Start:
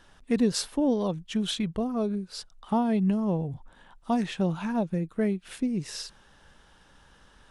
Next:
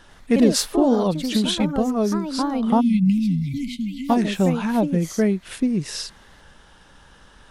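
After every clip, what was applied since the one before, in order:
delay with pitch and tempo change per echo 97 ms, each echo +3 semitones, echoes 2, each echo −6 dB
time-frequency box erased 0:02.80–0:04.09, 280–2,000 Hz
level +7 dB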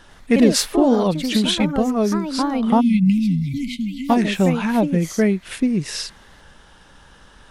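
dynamic equaliser 2,200 Hz, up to +5 dB, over −44 dBFS, Q 1.7
level +2 dB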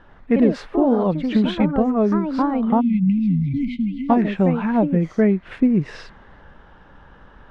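low-pass filter 1,600 Hz 12 dB per octave
speech leveller within 3 dB 0.5 s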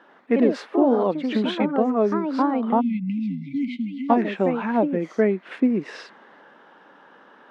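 high-pass filter 250 Hz 24 dB per octave

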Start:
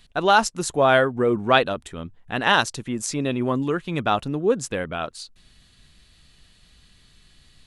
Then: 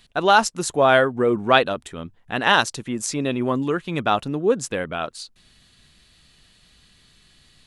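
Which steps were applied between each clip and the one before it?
low-shelf EQ 86 Hz −8 dB
level +1.5 dB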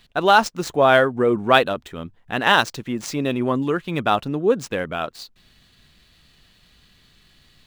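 running median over 5 samples
level +1 dB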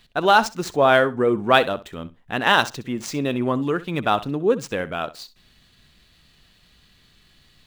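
flutter between parallel walls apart 11 metres, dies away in 0.23 s
level −1 dB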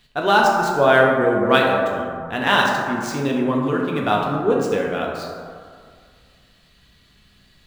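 dense smooth reverb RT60 2.1 s, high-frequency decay 0.35×, DRR −1.5 dB
level −2 dB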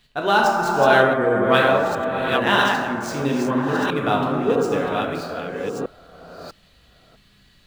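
delay that plays each chunk backwards 651 ms, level −4 dB
level −2 dB

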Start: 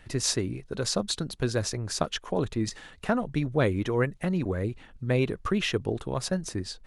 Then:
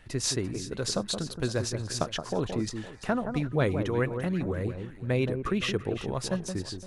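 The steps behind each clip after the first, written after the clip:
delay that swaps between a low-pass and a high-pass 171 ms, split 1,400 Hz, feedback 54%, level −7 dB
level −2 dB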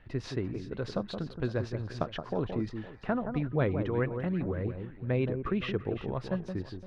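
high-frequency loss of the air 340 metres
level −1.5 dB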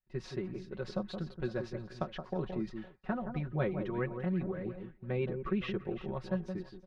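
comb filter 5.4 ms, depth 86%
downward expander −35 dBFS
level −6.5 dB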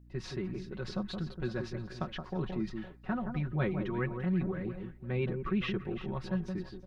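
dynamic equaliser 550 Hz, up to −7 dB, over −50 dBFS, Q 1.4
transient designer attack −3 dB, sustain +1 dB
mains hum 60 Hz, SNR 21 dB
level +4 dB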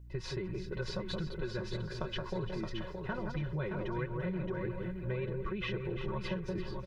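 comb filter 2 ms, depth 69%
downward compressor, threshold −36 dBFS, peak gain reduction 11 dB
on a send: repeating echo 621 ms, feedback 26%, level −6 dB
on the sum: level +2.5 dB

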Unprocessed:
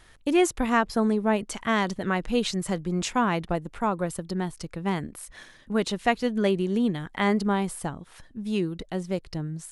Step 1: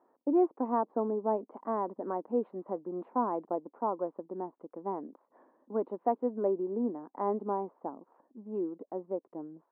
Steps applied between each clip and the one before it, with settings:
elliptic band-pass filter 260–1,000 Hz, stop band 70 dB
level −3.5 dB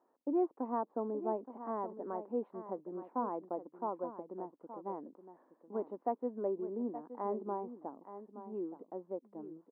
single-tap delay 872 ms −12 dB
level −6 dB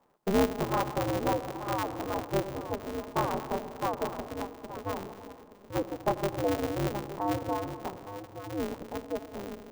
on a send at −10.5 dB: convolution reverb RT60 2.1 s, pre-delay 73 ms
on the sum: ring modulator with a square carrier 100 Hz
level +6.5 dB

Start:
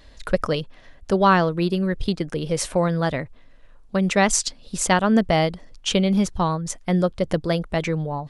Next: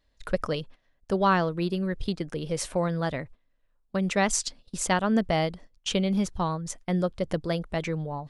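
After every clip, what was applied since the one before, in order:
noise gate −38 dBFS, range −16 dB
level −6 dB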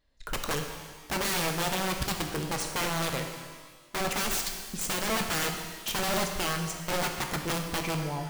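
wrap-around overflow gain 23 dB
reverb with rising layers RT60 1.4 s, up +12 semitones, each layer −8 dB, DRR 3.5 dB
level −2 dB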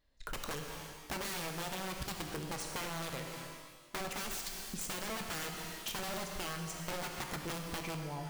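downward compressor, threshold −34 dBFS, peak gain reduction 9 dB
level −3 dB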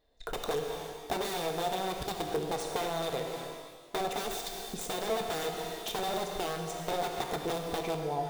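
hollow resonant body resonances 450/690/3,600 Hz, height 15 dB, ringing for 25 ms

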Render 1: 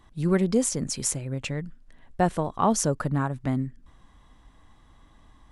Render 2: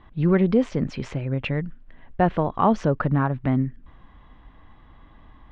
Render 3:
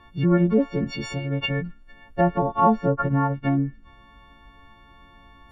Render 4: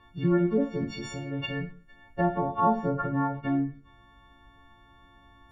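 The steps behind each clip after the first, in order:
low-pass filter 3,100 Hz 24 dB per octave; in parallel at −1 dB: brickwall limiter −18.5 dBFS, peak gain reduction 9 dB
every partial snapped to a pitch grid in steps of 4 semitones; treble cut that deepens with the level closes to 1,300 Hz, closed at −17.5 dBFS
convolution reverb RT60 0.40 s, pre-delay 6 ms, DRR 5 dB; level −6.5 dB

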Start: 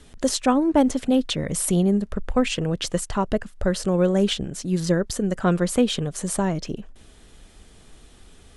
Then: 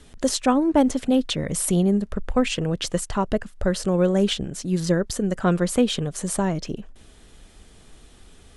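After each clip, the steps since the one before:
no processing that can be heard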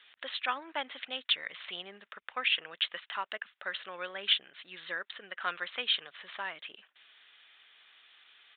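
flat-topped band-pass 3,100 Hz, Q 0.7
downsampling to 8,000 Hz
level +1.5 dB

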